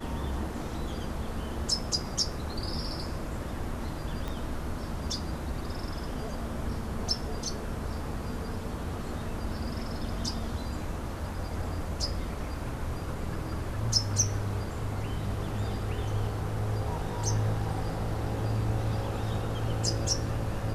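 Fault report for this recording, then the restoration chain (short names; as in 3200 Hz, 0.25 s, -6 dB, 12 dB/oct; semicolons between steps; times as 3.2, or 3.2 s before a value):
4.28 pop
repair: de-click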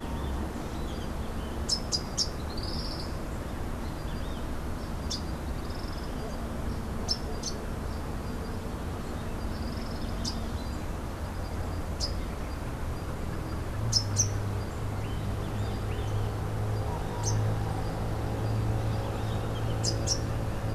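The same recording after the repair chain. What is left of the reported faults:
4.28 pop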